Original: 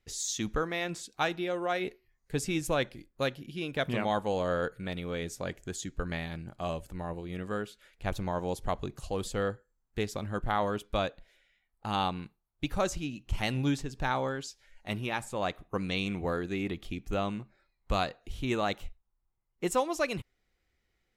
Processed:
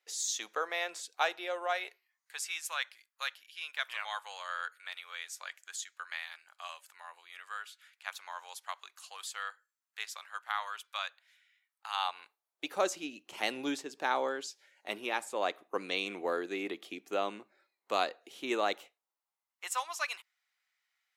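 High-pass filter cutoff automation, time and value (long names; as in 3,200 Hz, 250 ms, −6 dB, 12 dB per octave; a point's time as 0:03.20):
high-pass filter 24 dB per octave
0:01.55 530 Hz
0:02.45 1,100 Hz
0:11.87 1,100 Hz
0:12.77 320 Hz
0:18.77 320 Hz
0:19.64 950 Hz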